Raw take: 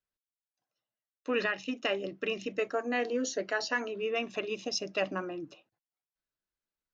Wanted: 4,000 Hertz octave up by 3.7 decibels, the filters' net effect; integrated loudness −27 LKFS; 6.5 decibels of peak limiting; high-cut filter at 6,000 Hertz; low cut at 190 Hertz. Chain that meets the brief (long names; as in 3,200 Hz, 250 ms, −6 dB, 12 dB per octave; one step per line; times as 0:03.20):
high-pass filter 190 Hz
low-pass filter 6,000 Hz
parametric band 4,000 Hz +7 dB
level +7 dB
brickwall limiter −15 dBFS